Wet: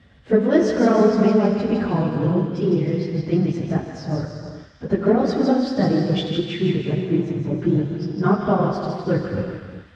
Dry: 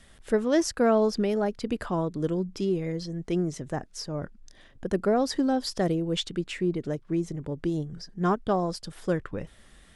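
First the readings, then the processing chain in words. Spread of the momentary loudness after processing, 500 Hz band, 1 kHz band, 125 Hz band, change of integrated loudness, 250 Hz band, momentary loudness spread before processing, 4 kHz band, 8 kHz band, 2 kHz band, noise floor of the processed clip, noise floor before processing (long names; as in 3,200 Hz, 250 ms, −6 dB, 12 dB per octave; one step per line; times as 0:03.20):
10 LU, +6.5 dB, +5.5 dB, +10.5 dB, +7.5 dB, +8.5 dB, 11 LU, +2.5 dB, can't be measured, +5.5 dB, −47 dBFS, −55 dBFS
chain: random phases in long frames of 50 ms
low-shelf EQ 170 Hz +9.5 dB
on a send: delay with a high-pass on its return 159 ms, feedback 54%, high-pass 1,600 Hz, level −4 dB
on the sum: reverb whose tail is shaped and stops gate 450 ms flat, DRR 3 dB
in parallel at −9 dB: dead-zone distortion −34 dBFS
on the sum: high-pass filter 66 Hz 24 dB per octave
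high-frequency loss of the air 190 metres
level +2 dB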